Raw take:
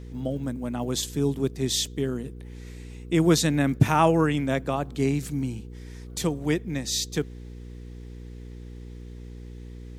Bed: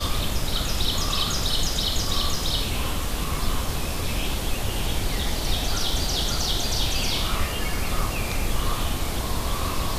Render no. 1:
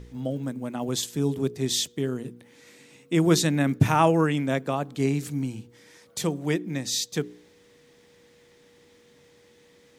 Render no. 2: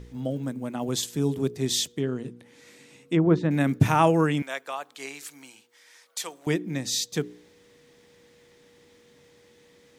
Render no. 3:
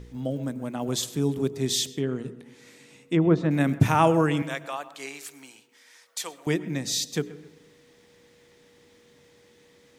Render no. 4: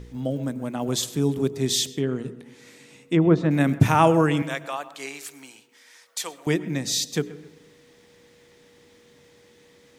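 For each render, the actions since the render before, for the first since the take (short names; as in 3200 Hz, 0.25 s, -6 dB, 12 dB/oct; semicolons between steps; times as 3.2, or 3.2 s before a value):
de-hum 60 Hz, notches 7
1.92–3.51 treble ducked by the level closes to 1200 Hz, closed at -17 dBFS; 4.42–6.47 HPF 920 Hz
analogue delay 0.13 s, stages 2048, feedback 36%, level -18 dB; digital reverb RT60 0.98 s, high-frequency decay 0.3×, pre-delay 60 ms, DRR 18.5 dB
gain +2.5 dB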